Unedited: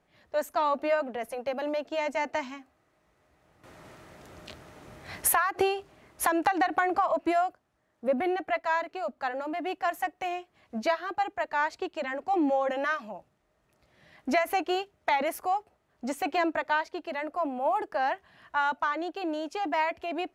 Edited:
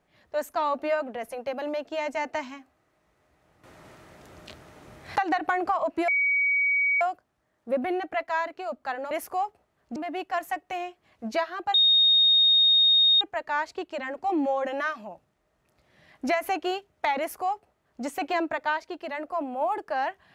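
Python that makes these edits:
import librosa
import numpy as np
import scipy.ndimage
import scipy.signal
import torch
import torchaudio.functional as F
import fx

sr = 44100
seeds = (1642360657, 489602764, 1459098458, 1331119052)

y = fx.edit(x, sr, fx.cut(start_s=5.16, length_s=1.29),
    fx.insert_tone(at_s=7.37, length_s=0.93, hz=2260.0, db=-20.5),
    fx.insert_tone(at_s=11.25, length_s=1.47, hz=3710.0, db=-16.0),
    fx.duplicate(start_s=15.23, length_s=0.85, to_s=9.47), tone=tone)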